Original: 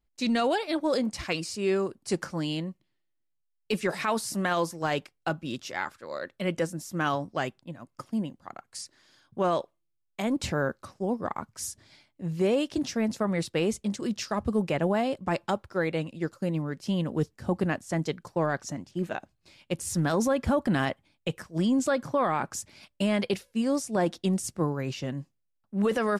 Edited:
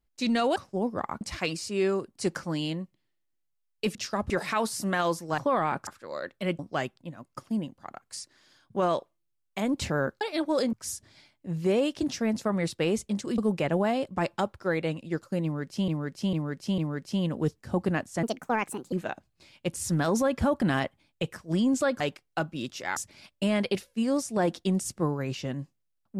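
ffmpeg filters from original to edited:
-filter_complex "[0:a]asplit=18[a][b][c][d][e][f][g][h][i][j][k][l][m][n][o][p][q][r];[a]atrim=end=0.562[s];[b]atrim=start=10.828:end=11.482[t];[c]atrim=start=1.078:end=3.822[u];[d]atrim=start=14.128:end=14.482[v];[e]atrim=start=3.818:end=4.902[w];[f]atrim=start=22.058:end=22.552[x];[g]atrim=start=5.858:end=6.582[y];[h]atrim=start=7.208:end=10.832[z];[i]atrim=start=0.558:end=1.082[aa];[j]atrim=start=11.478:end=14.132[ab];[k]atrim=start=14.478:end=16.982[ac];[l]atrim=start=16.528:end=16.982[ad];[m]atrim=start=16.528:end=16.982[ae];[n]atrim=start=16.528:end=17.984[af];[o]atrim=start=17.98:end=18.98,asetpts=PTS-STARTPTS,asetrate=63504,aresample=44100[ag];[p]atrim=start=18.976:end=22.062[ah];[q]atrim=start=4.898:end=5.862[ai];[r]atrim=start=22.548[aj];[s][t]acrossfade=d=0.004:c1=hsin:c2=hsin[ak];[ak][u]acrossfade=d=0.004:c1=hsin:c2=hsin[al];[al][v]acrossfade=d=0.004:c1=hsin:c2=hsin[am];[am][w]acrossfade=d=0.004:c1=hsin:c2=hsin[an];[an][x]acrossfade=d=0.004:c1=hsin:c2=hsin[ao];[ao][y]acrossfade=d=0.004:c1=hsin:c2=hsin[ap];[ap][z]acrossfade=d=0.004:c1=hsin:c2=hsin[aq];[aq][aa]acrossfade=d=0.004:c1=hsin:c2=hsin[ar];[ar][ab]acrossfade=d=0.004:c1=hsin:c2=hsin[as];[as][ac]acrossfade=d=0.004:c1=hsin:c2=hsin[at];[at][ad]acrossfade=d=0.004:c1=hsin:c2=hsin[au];[au][ae]acrossfade=d=0.004:c1=hsin:c2=hsin[av];[av][af]acrossfade=d=0.004:c1=hsin:c2=hsin[aw];[aw][ag]acrossfade=d=0.004:c1=hsin:c2=hsin[ax];[ax][ah]acrossfade=d=0.004:c1=hsin:c2=hsin[ay];[ay][ai]acrossfade=d=0.004:c1=hsin:c2=hsin[az];[az][aj]acrossfade=d=0.004:c1=hsin:c2=hsin"

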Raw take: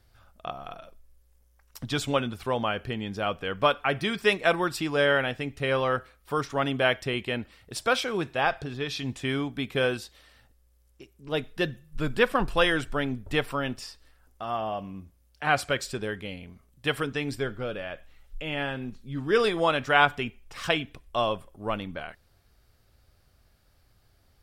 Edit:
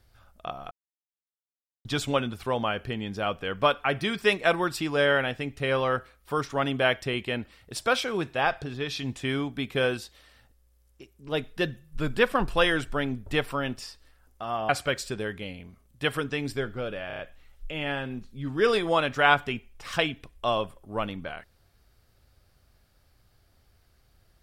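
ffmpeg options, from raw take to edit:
-filter_complex "[0:a]asplit=8[a][b][c][d][e][f][g][h];[a]atrim=end=0.71,asetpts=PTS-STARTPTS,afade=t=out:st=0.706:d=0.004:c=hsin[i];[b]atrim=start=0.71:end=1.85,asetpts=PTS-STARTPTS,volume=0[j];[c]atrim=start=1.85:end=14.692,asetpts=PTS-STARTPTS,afade=t=in:d=0.004:c=hsin[k];[d]atrim=start=15.518:end=17.932[l];[e]atrim=start=17.898:end=17.932[m];[f]atrim=start=17.898:end=17.932[n];[g]atrim=start=17.898:end=17.932[o];[h]atrim=start=17.898[p];[i][j][k]concat=n=3:v=0:a=1[q];[q][l]acrossfade=d=0.004:c1=hsin:c2=hsin[r];[r][m]acrossfade=d=0.004:c1=hsin:c2=hsin[s];[s][n]acrossfade=d=0.004:c1=hsin:c2=hsin[t];[t][o]acrossfade=d=0.004:c1=hsin:c2=hsin[u];[u][p]acrossfade=d=0.004:c1=hsin:c2=hsin"

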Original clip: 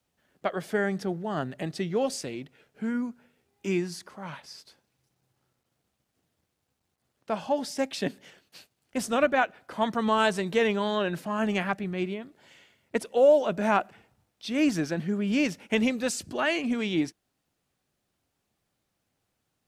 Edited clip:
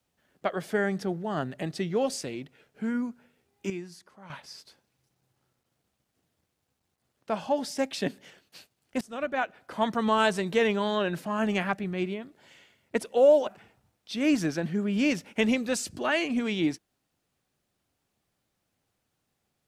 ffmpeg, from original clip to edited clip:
-filter_complex "[0:a]asplit=5[a][b][c][d][e];[a]atrim=end=3.702[f];[b]atrim=start=3.698:end=4.302,asetpts=PTS-STARTPTS,volume=-10dB[g];[c]atrim=start=4.298:end=9.01,asetpts=PTS-STARTPTS,afade=t=out:st=4.708:d=0.004:c=hsin:silence=0.0891251[h];[d]atrim=start=9.01:end=13.472,asetpts=PTS-STARTPTS,afade=t=in:d=0.71:silence=0.0891251[i];[e]atrim=start=13.808[j];[f][g]acrossfade=d=0.004:c1=hsin:c2=hsin[k];[h][i]concat=n=2:v=0:a=1[l];[k][l]acrossfade=d=0.004:c1=hsin:c2=hsin[m];[m][j]acrossfade=d=0.004:c1=hsin:c2=hsin"

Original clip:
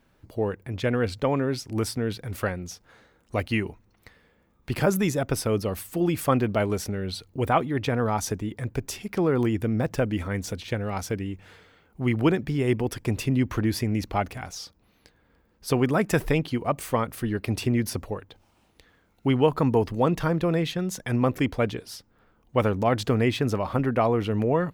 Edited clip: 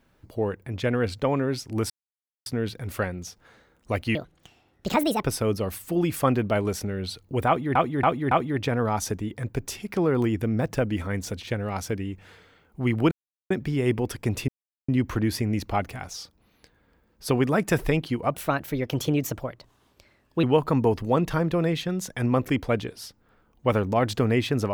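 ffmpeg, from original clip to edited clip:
-filter_complex "[0:a]asplit=11[a][b][c][d][e][f][g][h][i][j][k];[a]atrim=end=1.9,asetpts=PTS-STARTPTS,afade=t=out:st=1.896:d=0.004:c=hsin,apad=pad_dur=0.56[l];[b]atrim=start=1.9:end=3.594,asetpts=PTS-STARTPTS,afade=t=in:d=0.004:c=hsin[m];[c]atrim=start=3.59:end=5.28,asetpts=PTS-STARTPTS,asetrate=68796,aresample=44100[n];[d]atrim=start=5.276:end=7.802[o];[e]atrim=start=7.518:end=7.802[p];[f]atrim=start=7.518:end=7.802[q];[g]atrim=start=7.518:end=12.32,asetpts=PTS-STARTPTS,afade=t=out:st=4.798:d=0.004:c=hsin,apad=pad_dur=0.39[r];[h]atrim=start=12.32:end=13.3,asetpts=PTS-STARTPTS,afade=t=in:d=0.004:c=hsin,afade=t=out:st=0.976:d=0.004:c=hsin,apad=pad_dur=0.4[s];[i]atrim=start=13.3:end=16.764,asetpts=PTS-STARTPTS,afade=t=in:d=0.004:c=hsin[t];[j]atrim=start=16.76:end=19.33,asetpts=PTS-STARTPTS,asetrate=54243,aresample=44100[u];[k]atrim=start=19.326[v];[l][m]concat=n=2:v=0:a=1[w];[w][n]acrossfade=d=0.004:c1=hsin:c2=hsin[x];[x][o]acrossfade=d=0.004:c1=hsin:c2=hsin[y];[y][p]acrossfade=d=0.004:c1=hsin:c2=hsin[z];[z][q]acrossfade=d=0.004:c1=hsin:c2=hsin[aa];[r][s][t]concat=n=3:v=0:a=1[ab];[aa][ab]acrossfade=d=0.004:c1=hsin:c2=hsin[ac];[ac][u]acrossfade=d=0.004:c1=hsin:c2=hsin[ad];[ad][v]acrossfade=d=0.004:c1=hsin:c2=hsin"

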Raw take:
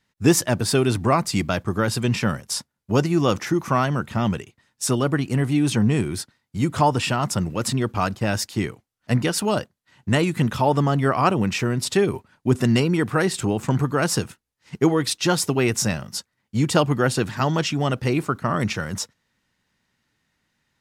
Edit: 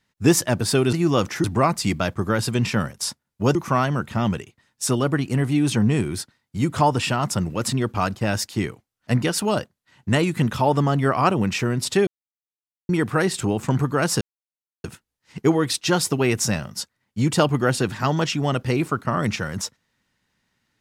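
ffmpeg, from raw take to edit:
-filter_complex "[0:a]asplit=7[a][b][c][d][e][f][g];[a]atrim=end=0.932[h];[b]atrim=start=3.038:end=3.552[i];[c]atrim=start=0.928:end=3.042[j];[d]atrim=start=3.548:end=12.07,asetpts=PTS-STARTPTS,afade=t=out:st=8.518:d=0.004:c=hsin[k];[e]atrim=start=12.07:end=12.89,asetpts=PTS-STARTPTS,volume=0[l];[f]atrim=start=12.89:end=14.21,asetpts=PTS-STARTPTS,afade=t=in:d=0.004:c=hsin,afade=t=out:st=1.316:d=0.004:c=hsin,apad=pad_dur=0.63[m];[g]atrim=start=14.21,asetpts=PTS-STARTPTS,afade=t=in:d=0.004:c=hsin[n];[h][i]acrossfade=d=0.004:c1=hsin:c2=hsin[o];[o][j]acrossfade=d=0.004:c1=hsin:c2=hsin[p];[k][l][m][n]concat=n=4:v=0:a=1[q];[p][q]acrossfade=d=0.004:c1=hsin:c2=hsin"

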